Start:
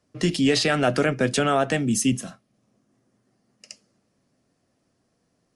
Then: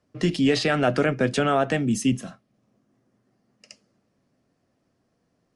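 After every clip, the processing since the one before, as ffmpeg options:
-af "lowpass=f=3.4k:p=1"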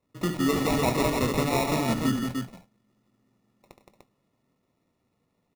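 -af "acrusher=samples=28:mix=1:aa=0.000001,aecho=1:1:70|169|297:0.355|0.562|0.596,volume=-5.5dB"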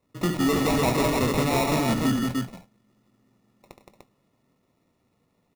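-af "aeval=exprs='0.237*(cos(1*acos(clip(val(0)/0.237,-1,1)))-cos(1*PI/2))+0.0299*(cos(5*acos(clip(val(0)/0.237,-1,1)))-cos(5*PI/2))':c=same"

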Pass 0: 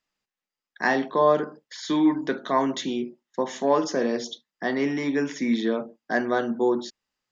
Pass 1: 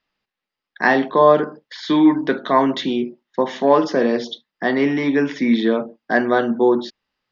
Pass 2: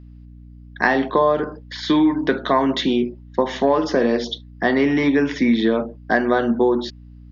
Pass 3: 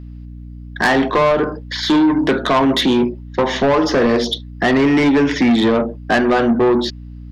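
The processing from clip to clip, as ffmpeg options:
-af "lowpass=f=4.6k:w=0.5412,lowpass=f=4.6k:w=1.3066,volume=7dB"
-af "acompressor=threshold=-16dB:ratio=6,aeval=exprs='val(0)+0.00708*(sin(2*PI*60*n/s)+sin(2*PI*2*60*n/s)/2+sin(2*PI*3*60*n/s)/3+sin(2*PI*4*60*n/s)/4+sin(2*PI*5*60*n/s)/5)':c=same,volume=3dB"
-af "asoftclip=type=tanh:threshold=-18dB,volume=8.5dB"

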